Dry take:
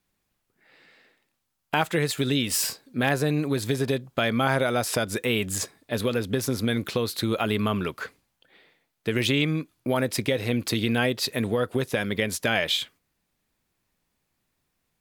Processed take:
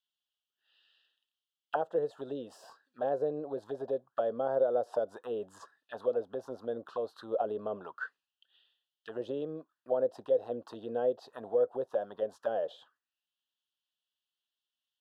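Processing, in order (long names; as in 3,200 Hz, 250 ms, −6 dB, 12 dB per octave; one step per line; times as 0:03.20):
dynamic equaliser 730 Hz, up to +5 dB, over −40 dBFS, Q 2.8
envelope filter 510–3,100 Hz, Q 4.7, down, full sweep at −20 dBFS
Butterworth band-reject 2,200 Hz, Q 1.9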